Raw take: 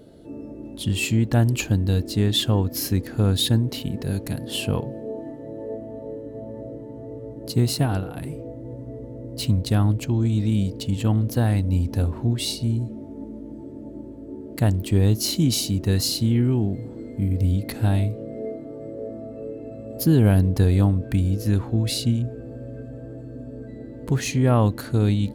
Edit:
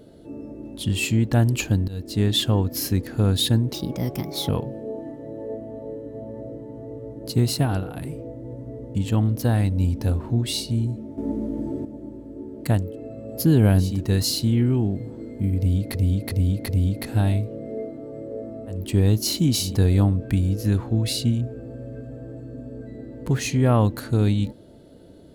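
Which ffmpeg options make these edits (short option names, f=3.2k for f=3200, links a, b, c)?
-filter_complex "[0:a]asplit=14[a][b][c][d][e][f][g][h][i][j][k][l][m][n];[a]atrim=end=1.88,asetpts=PTS-STARTPTS,afade=t=out:st=1.876:d=0.004:c=hsin:silence=0.1[o];[b]atrim=start=1.88:end=3.744,asetpts=PTS-STARTPTS,afade=t=in:d=0.34:silence=0.1[p];[c]atrim=start=3.74:end=4.69,asetpts=PTS-STARTPTS,asetrate=56007,aresample=44100,atrim=end_sample=32988,asetpts=PTS-STARTPTS[q];[d]atrim=start=4.686:end=9.152[r];[e]atrim=start=10.868:end=13.102[s];[f]atrim=start=13.098:end=13.772,asetpts=PTS-STARTPTS,volume=9dB[t];[g]atrim=start=13.768:end=14.88[u];[h]atrim=start=19.33:end=20.63[v];[i]atrim=start=15.56:end=17.732[w];[j]atrim=start=17.358:end=17.732[x];[k]atrim=start=17.358:end=17.732[y];[l]atrim=start=17.358:end=19.57[z];[m]atrim=start=14.64:end=15.8[aa];[n]atrim=start=20.39[ab];[o][p]concat=n=2:v=0:a=1[ac];[ac][q]acrossfade=d=0.004:c1=hsin:c2=hsin[ad];[ad][r]acrossfade=d=0.004:c1=hsin:c2=hsin[ae];[ae][s]acrossfade=d=0.004:c1=hsin:c2=hsin[af];[af][t]acrossfade=d=0.004:c1=hsin:c2=hsin[ag];[ag][u]acrossfade=d=0.004:c1=hsin:c2=hsin[ah];[ah][v]acrossfade=d=0.24:c1=tri:c2=tri[ai];[ai][w]acrossfade=d=0.24:c1=tri:c2=tri[aj];[aj][x]acrossfade=d=0.004:c1=hsin:c2=hsin[ak];[ak][y]acrossfade=d=0.004:c1=hsin:c2=hsin[al];[al][z]acrossfade=d=0.004:c1=hsin:c2=hsin[am];[am][aa]acrossfade=d=0.24:c1=tri:c2=tri[an];[an][ab]acrossfade=d=0.24:c1=tri:c2=tri"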